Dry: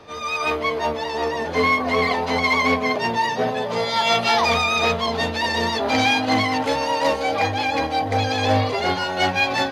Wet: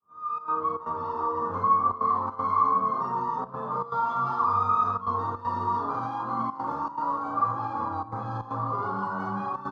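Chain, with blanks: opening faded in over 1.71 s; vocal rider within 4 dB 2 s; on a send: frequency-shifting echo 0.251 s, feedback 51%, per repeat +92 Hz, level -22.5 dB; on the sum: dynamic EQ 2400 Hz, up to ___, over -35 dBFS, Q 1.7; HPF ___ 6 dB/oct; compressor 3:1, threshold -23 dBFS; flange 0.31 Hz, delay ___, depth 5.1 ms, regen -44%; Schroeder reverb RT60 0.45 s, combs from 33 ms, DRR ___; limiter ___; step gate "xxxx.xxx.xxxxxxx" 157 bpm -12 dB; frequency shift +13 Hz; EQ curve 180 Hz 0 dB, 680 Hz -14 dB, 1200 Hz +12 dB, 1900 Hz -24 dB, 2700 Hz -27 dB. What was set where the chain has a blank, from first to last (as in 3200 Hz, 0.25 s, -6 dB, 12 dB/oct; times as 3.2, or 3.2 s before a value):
-6 dB, 45 Hz, 5 ms, -2 dB, -16.5 dBFS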